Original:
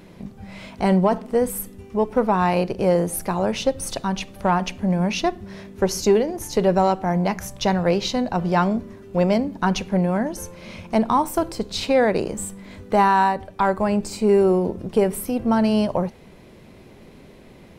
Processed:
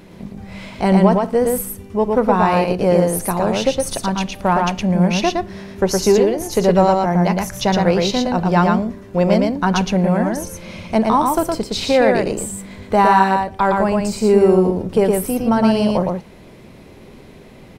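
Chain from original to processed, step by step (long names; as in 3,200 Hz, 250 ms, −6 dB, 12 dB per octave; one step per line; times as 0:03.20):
single-tap delay 114 ms −3 dB
level +3 dB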